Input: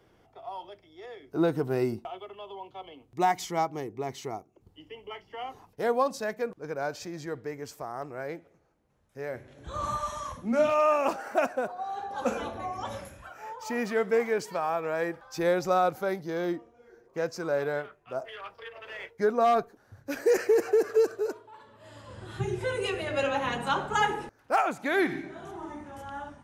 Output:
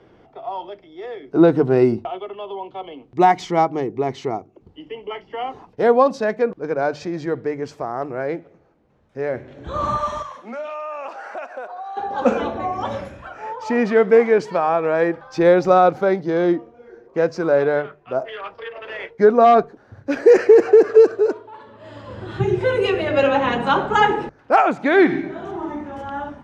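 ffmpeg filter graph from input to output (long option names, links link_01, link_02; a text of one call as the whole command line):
ffmpeg -i in.wav -filter_complex "[0:a]asettb=1/sr,asplit=3[link_01][link_02][link_03];[link_01]atrim=end=10.224[link_04];[link_02]atrim=start=10.22:end=11.97,asetpts=PTS-STARTPTS,afade=type=in:duration=0.004:curve=qsin,afade=type=out:start_time=1.746:duration=0.004:curve=qsin,highpass=690,acompressor=threshold=-40dB:ratio=4:attack=3.2:release=140:knee=1:detection=peak[link_05];[link_03]atrim=start=11.966[link_06];[link_04][link_05]acrossfade=duration=0.004:curve1=hsin:curve2=qsin[link_07];[link_07][link_06]acrossfade=duration=0.004:curve1=qsin:curve2=hsin,lowpass=4100,equalizer=frequency=320:width_type=o:width=2.6:gain=5,bandreject=frequency=50:width_type=h:width=6,bandreject=frequency=100:width_type=h:width=6,bandreject=frequency=150:width_type=h:width=6,volume=8dB" out.wav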